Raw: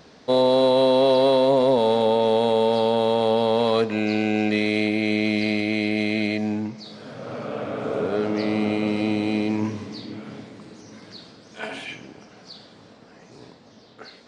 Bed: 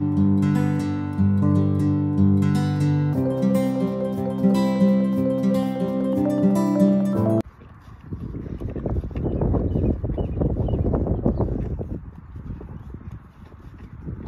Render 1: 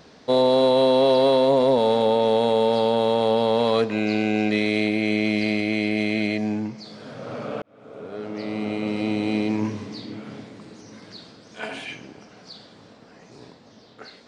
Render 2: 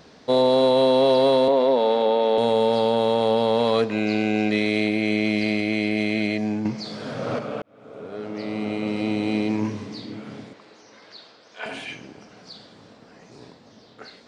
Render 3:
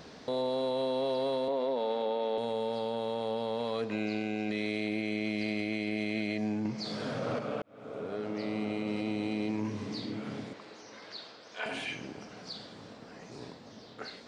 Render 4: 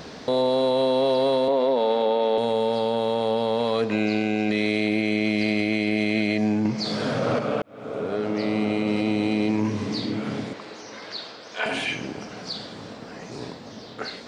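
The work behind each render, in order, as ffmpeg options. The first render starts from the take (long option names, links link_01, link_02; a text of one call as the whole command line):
ffmpeg -i in.wav -filter_complex "[0:a]asettb=1/sr,asplit=3[link_01][link_02][link_03];[link_01]atrim=end=4.964[link_04];[link_02]atrim=start=4.96:end=7,asetpts=PTS-STARTPTS,afade=type=in:duration=0.004:curve=qsin,afade=type=out:start_time=2.036:duration=0.004:curve=qsin,bandreject=frequency=3800:width=13[link_05];[link_03]atrim=start=6.996[link_06];[link_04][link_05]acrossfade=duration=0.004:curve1=hsin:curve2=qsin[link_07];[link_07][link_06]acrossfade=duration=0.004:curve1=qsin:curve2=hsin,asplit=2[link_08][link_09];[link_08]atrim=end=7.62,asetpts=PTS-STARTPTS,afade=type=out:start_time=7.616:duration=0.004:curve=hsin[link_10];[link_09]atrim=start=7.62,asetpts=PTS-STARTPTS,afade=type=in:duration=1.73[link_11];[link_10][link_11]concat=n=2:v=0:a=1" out.wav
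ffmpeg -i in.wav -filter_complex "[0:a]asettb=1/sr,asplit=3[link_01][link_02][link_03];[link_01]atrim=end=1.484[link_04];[link_02]atrim=start=1.48:end=2.38,asetpts=PTS-STARTPTS,afade=type=in:duration=0.004:curve=qsin,afade=type=out:start_time=0.896:duration=0.004:curve=qsin,acrossover=split=210 4900:gain=0.0708 1 0.178[link_05][link_06][link_07];[link_05][link_06][link_07]amix=inputs=3:normalize=0[link_08];[link_03]atrim=start=2.376[link_09];[link_04][link_08]acrossfade=duration=0.004:curve1=hsin:curve2=qsin[link_10];[link_10][link_09]acrossfade=duration=0.004:curve1=qsin:curve2=hsin,asettb=1/sr,asplit=3[link_11][link_12][link_13];[link_11]atrim=end=6.654[link_14];[link_12]atrim=start=6.65:end=7.39,asetpts=PTS-STARTPTS,afade=type=in:duration=0.004:curve=qsin,afade=type=out:start_time=0.736:duration=0.004:curve=qsin,acontrast=77[link_15];[link_13]atrim=start=7.386[link_16];[link_14][link_15]acrossfade=duration=0.004:curve1=hsin:curve2=qsin[link_17];[link_17][link_16]acrossfade=duration=0.004:curve1=qsin:curve2=hsin,asettb=1/sr,asplit=3[link_18][link_19][link_20];[link_18]atrim=end=10.534[link_21];[link_19]atrim=start=10.53:end=11.66,asetpts=PTS-STARTPTS,afade=type=in:duration=0.004:curve=qsin,afade=type=out:start_time=1.126:duration=0.004:curve=qsin,acrossover=split=420 6100:gain=0.141 1 0.158[link_22][link_23][link_24];[link_22][link_23][link_24]amix=inputs=3:normalize=0[link_25];[link_20]atrim=start=11.656[link_26];[link_21][link_25]acrossfade=duration=0.004:curve1=hsin:curve2=qsin[link_27];[link_27][link_26]acrossfade=duration=0.004:curve1=qsin:curve2=hsin" out.wav
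ffmpeg -i in.wav -af "acompressor=threshold=-35dB:ratio=2,alimiter=limit=-24dB:level=0:latency=1:release=39" out.wav
ffmpeg -i in.wav -af "volume=10dB" out.wav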